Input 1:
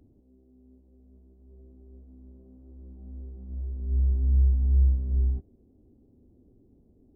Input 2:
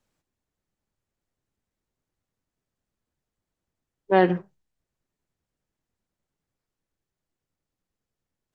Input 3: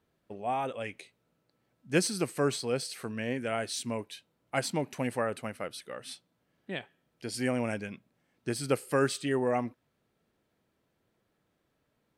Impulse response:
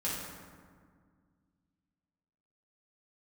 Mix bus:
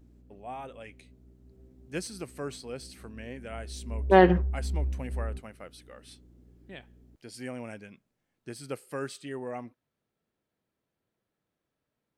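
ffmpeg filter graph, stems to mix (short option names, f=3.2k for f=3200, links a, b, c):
-filter_complex "[0:a]lowshelf=f=140:g=-10,aeval=exprs='val(0)+0.00178*(sin(2*PI*60*n/s)+sin(2*PI*2*60*n/s)/2+sin(2*PI*3*60*n/s)/3+sin(2*PI*4*60*n/s)/4+sin(2*PI*5*60*n/s)/5)':c=same,volume=-1dB[a];[1:a]dynaudnorm=f=140:g=17:m=8dB,volume=-2.5dB[b];[2:a]volume=-8.5dB[c];[a][b][c]amix=inputs=3:normalize=0"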